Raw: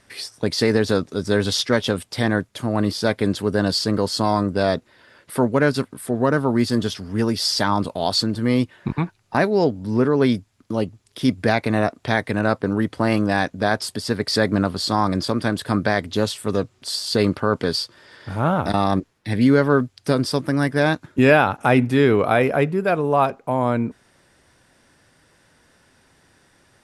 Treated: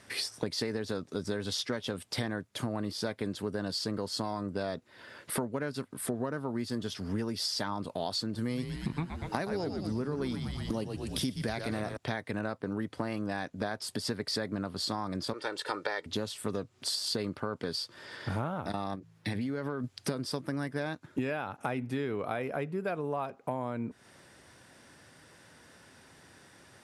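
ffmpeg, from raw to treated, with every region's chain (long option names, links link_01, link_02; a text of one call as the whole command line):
ffmpeg -i in.wav -filter_complex "[0:a]asettb=1/sr,asplit=3[link_01][link_02][link_03];[link_01]atrim=end=8.384[link_04];[link_02]atrim=start=8.38:end=11.97,asetpts=PTS-STARTPTS,afade=type=in:duration=0.004:curve=qsin,afade=type=out:start_time=3.586:duration=0.004:curve=qsin,bass=frequency=250:gain=2,treble=frequency=4000:gain=9,asplit=8[link_05][link_06][link_07][link_08][link_09][link_10][link_11][link_12];[link_06]adelay=119,afreqshift=-96,volume=-7dB[link_13];[link_07]adelay=238,afreqshift=-192,volume=-11.7dB[link_14];[link_08]adelay=357,afreqshift=-288,volume=-16.5dB[link_15];[link_09]adelay=476,afreqshift=-384,volume=-21.2dB[link_16];[link_10]adelay=595,afreqshift=-480,volume=-25.9dB[link_17];[link_11]adelay=714,afreqshift=-576,volume=-30.7dB[link_18];[link_12]adelay=833,afreqshift=-672,volume=-35.4dB[link_19];[link_05][link_13][link_14][link_15][link_16][link_17][link_18][link_19]amix=inputs=8:normalize=0,atrim=end_sample=158319[link_20];[link_03]atrim=start=11.966[link_21];[link_04][link_20]acrossfade=duration=0.004:curve1=hsin:curve2=qsin[link_22];[link_22][link_21]acrossfade=duration=0.004:curve1=qsin:curve2=hsin,asettb=1/sr,asplit=3[link_23][link_24][link_25];[link_23]atrim=end=15.334[link_26];[link_24]atrim=start=15.33:end=16.06,asetpts=PTS-STARTPTS,afade=type=in:duration=0.004:curve=qsin,afade=type=out:start_time=0.726:duration=0.004:curve=qsin,highpass=450,lowpass=7500,aecho=1:1:2.2:0.69,atrim=end_sample=32193[link_27];[link_25]atrim=start=16.056[link_28];[link_26][link_27]acrossfade=duration=0.004:curve1=hsin:curve2=qsin[link_29];[link_29][link_28]acrossfade=duration=0.004:curve1=qsin:curve2=hsin,asettb=1/sr,asplit=3[link_30][link_31][link_32];[link_30]atrim=end=18.954[link_33];[link_31]atrim=start=18.95:end=19.84,asetpts=PTS-STARTPTS,afade=type=in:duration=0.004:curve=qsin,afade=type=out:start_time=0.886:duration=0.004:curve=qsin,bandreject=frequency=54.65:width_type=h:width=4,bandreject=frequency=109.3:width_type=h:width=4,bandreject=frequency=163.95:width_type=h:width=4,acompressor=threshold=-23dB:ratio=10:attack=3.2:release=140:knee=1:detection=peak[link_34];[link_32]atrim=start=19.836[link_35];[link_33][link_34]acrossfade=duration=0.004:curve1=hsin:curve2=qsin[link_36];[link_36][link_35]acrossfade=duration=0.004:curve1=qsin:curve2=hsin,highpass=77,acompressor=threshold=-31dB:ratio=12,volume=1dB" out.wav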